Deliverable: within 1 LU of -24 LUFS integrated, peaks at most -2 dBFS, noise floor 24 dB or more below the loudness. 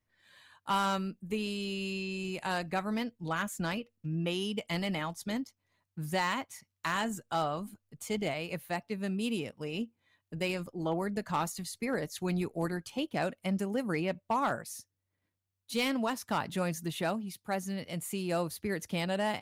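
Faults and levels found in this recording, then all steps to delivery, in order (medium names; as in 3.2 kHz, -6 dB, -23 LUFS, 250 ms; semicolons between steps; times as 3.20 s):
clipped samples 0.3%; clipping level -22.5 dBFS; loudness -34.5 LUFS; peak level -22.5 dBFS; loudness target -24.0 LUFS
-> clip repair -22.5 dBFS; trim +10.5 dB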